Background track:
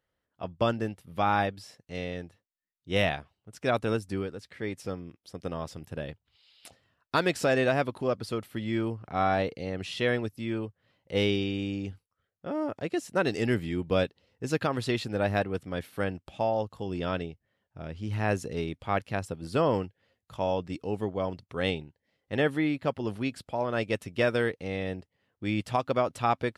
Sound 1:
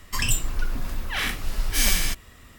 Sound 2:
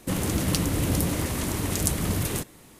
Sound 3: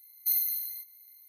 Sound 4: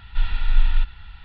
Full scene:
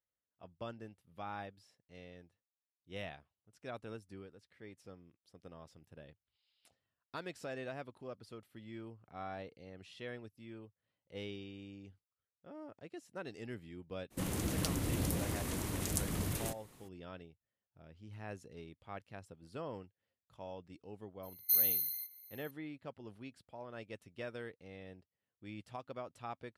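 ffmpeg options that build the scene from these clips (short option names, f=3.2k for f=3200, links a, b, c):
-filter_complex "[0:a]volume=-18.5dB[a];[2:a]atrim=end=2.79,asetpts=PTS-STARTPTS,volume=-10.5dB,afade=t=in:d=0.02,afade=t=out:st=2.77:d=0.02,adelay=14100[b];[3:a]atrim=end=1.28,asetpts=PTS-STARTPTS,volume=-2dB,afade=t=in:d=0.004:c=hsin,afade=t=out:st=1.276:d=0.004:c=hsin,adelay=21230[c];[a][b][c]amix=inputs=3:normalize=0"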